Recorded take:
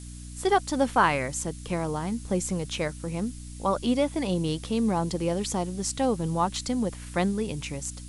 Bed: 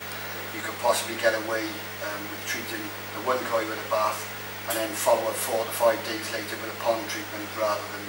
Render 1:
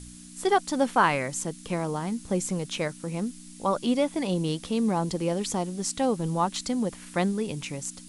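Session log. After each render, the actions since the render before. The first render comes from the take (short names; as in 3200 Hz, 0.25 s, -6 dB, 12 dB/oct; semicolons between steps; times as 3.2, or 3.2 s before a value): de-hum 60 Hz, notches 2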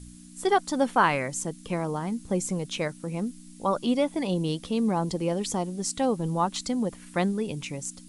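denoiser 6 dB, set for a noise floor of -46 dBFS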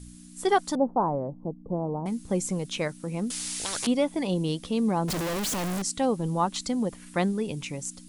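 0.75–2.06 steep low-pass 910 Hz; 3.3–3.87 spectral compressor 10:1; 5.08–5.82 infinite clipping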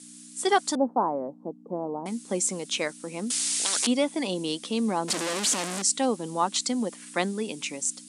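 Chebyshev band-pass 230–9200 Hz, order 3; high shelf 2700 Hz +9 dB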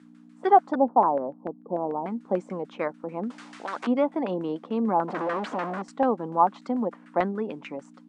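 LFO low-pass saw down 6.8 Hz 670–1600 Hz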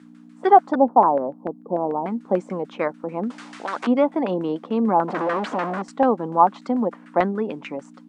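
gain +5 dB; limiter -2 dBFS, peak gain reduction 1 dB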